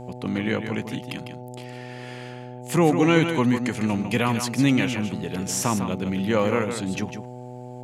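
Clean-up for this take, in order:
hum removal 124 Hz, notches 7
echo removal 152 ms −8 dB

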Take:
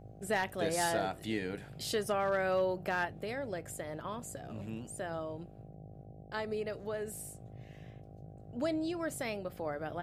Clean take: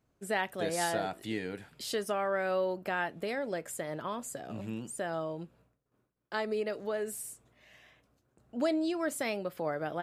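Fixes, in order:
clipped peaks rebuilt −23 dBFS
hum removal 52.4 Hz, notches 15
noise reduction from a noise print 21 dB
level correction +4 dB, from 0:03.05

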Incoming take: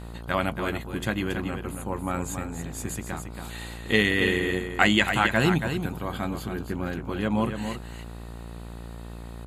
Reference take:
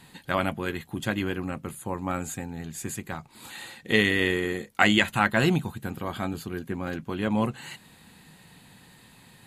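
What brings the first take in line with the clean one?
hum removal 57.8 Hz, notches 26
echo removal 277 ms −7.5 dB

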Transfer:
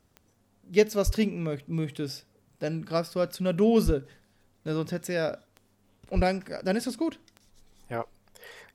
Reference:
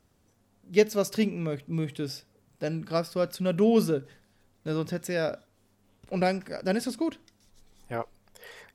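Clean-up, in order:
click removal
0:01.05–0:01.17: high-pass filter 140 Hz 24 dB per octave
0:03.85–0:03.97: high-pass filter 140 Hz 24 dB per octave
0:06.15–0:06.27: high-pass filter 140 Hz 24 dB per octave

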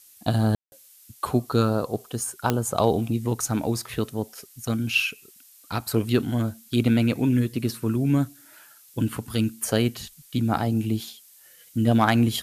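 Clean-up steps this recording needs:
clipped peaks rebuilt −8 dBFS
click removal
ambience match 0:00.55–0:00.72
noise reduction from a noise print 16 dB

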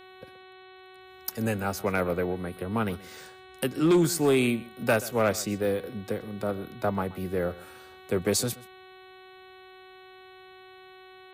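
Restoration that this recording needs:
clipped peaks rebuilt −16 dBFS
hum removal 374.2 Hz, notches 11
echo removal 128 ms −19.5 dB

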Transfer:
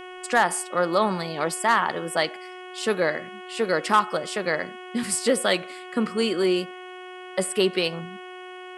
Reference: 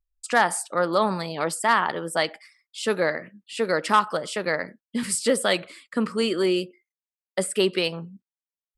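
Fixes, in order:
clipped peaks rebuilt −8.5 dBFS
hum removal 366.4 Hz, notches 9
downward expander −32 dBFS, range −21 dB

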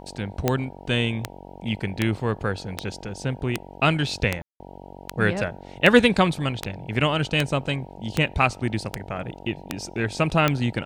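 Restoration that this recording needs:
click removal
hum removal 46.9 Hz, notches 20
ambience match 0:04.42–0:04.60

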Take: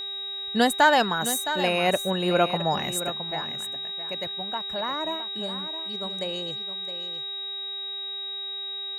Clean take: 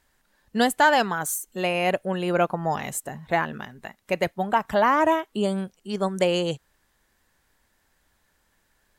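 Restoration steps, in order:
hum removal 395.3 Hz, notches 8
notch filter 3,800 Hz, Q 30
echo removal 665 ms −11 dB
level correction +11.5 dB, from 0:03.10

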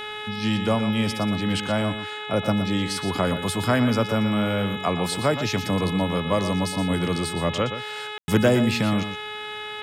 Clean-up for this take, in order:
hum removal 423.7 Hz, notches 9
ambience match 0:08.18–0:08.28
echo removal 119 ms −10.5 dB

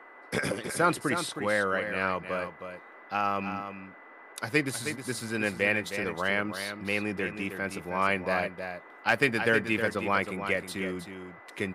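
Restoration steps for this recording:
clipped peaks rebuilt −10.5 dBFS
notch filter 2,000 Hz, Q 30
noise reduction from a noise print 25 dB
echo removal 315 ms −8.5 dB

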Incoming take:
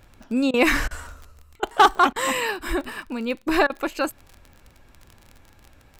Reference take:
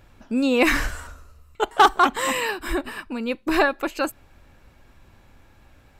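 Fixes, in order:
click removal
repair the gap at 0:00.51/0:00.88/0:01.60/0:02.13/0:03.67, 27 ms

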